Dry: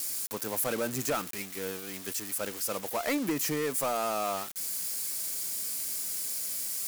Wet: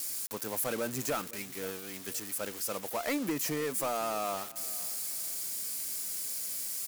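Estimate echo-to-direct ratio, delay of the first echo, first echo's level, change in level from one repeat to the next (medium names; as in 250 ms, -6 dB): -18.5 dB, 512 ms, -19.0 dB, -11.0 dB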